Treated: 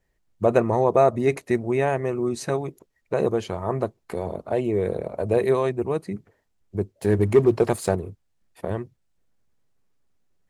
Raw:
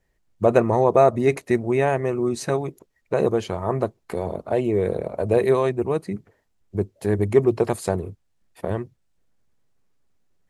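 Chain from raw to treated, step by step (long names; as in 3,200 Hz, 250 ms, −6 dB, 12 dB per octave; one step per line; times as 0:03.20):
0:06.92–0:07.95: leveller curve on the samples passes 1
level −2 dB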